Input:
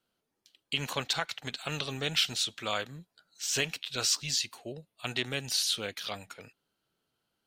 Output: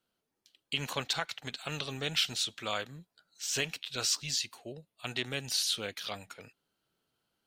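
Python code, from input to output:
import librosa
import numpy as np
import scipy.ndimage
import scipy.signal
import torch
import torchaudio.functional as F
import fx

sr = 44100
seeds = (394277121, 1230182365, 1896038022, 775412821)

y = fx.rider(x, sr, range_db=3, speed_s=2.0)
y = y * 10.0 ** (-3.0 / 20.0)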